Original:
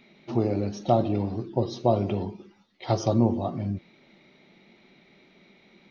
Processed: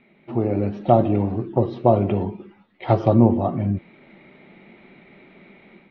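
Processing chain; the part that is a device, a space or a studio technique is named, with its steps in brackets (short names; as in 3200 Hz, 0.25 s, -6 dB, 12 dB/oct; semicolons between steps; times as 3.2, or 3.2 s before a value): action camera in a waterproof case (LPF 2700 Hz 24 dB/oct; AGC gain up to 9 dB; AAC 48 kbps 44100 Hz)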